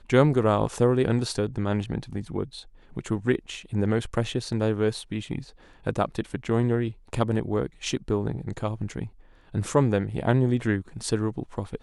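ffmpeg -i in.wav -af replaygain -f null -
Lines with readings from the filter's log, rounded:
track_gain = +6.7 dB
track_peak = 0.368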